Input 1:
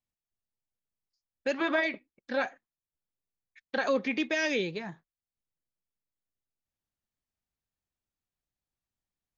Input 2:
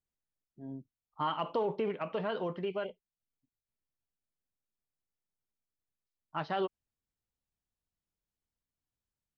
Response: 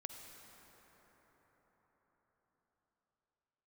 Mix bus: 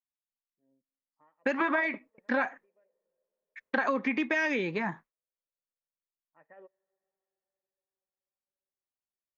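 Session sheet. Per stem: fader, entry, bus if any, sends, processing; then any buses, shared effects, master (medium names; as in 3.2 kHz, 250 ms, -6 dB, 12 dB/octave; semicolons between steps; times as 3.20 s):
0.0 dB, 0.00 s, no send, gate with hold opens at -57 dBFS
-11.5 dB, 0.00 s, send -21 dB, cascade formant filter e; upward expansion 1.5:1, over -58 dBFS; auto duck -17 dB, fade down 0.30 s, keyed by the first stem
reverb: on, RT60 5.5 s, pre-delay 43 ms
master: graphic EQ 250/1000/2000/4000 Hz +9/+12/+9/-5 dB; compression 6:1, threshold -25 dBFS, peak gain reduction 10.5 dB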